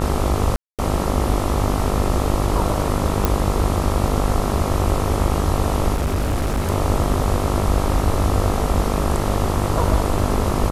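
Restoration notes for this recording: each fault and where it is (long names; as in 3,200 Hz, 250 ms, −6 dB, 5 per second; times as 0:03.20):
mains buzz 50 Hz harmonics 27 −23 dBFS
0:00.56–0:00.79: drop-out 227 ms
0:03.25: click
0:05.93–0:06.70: clipping −16.5 dBFS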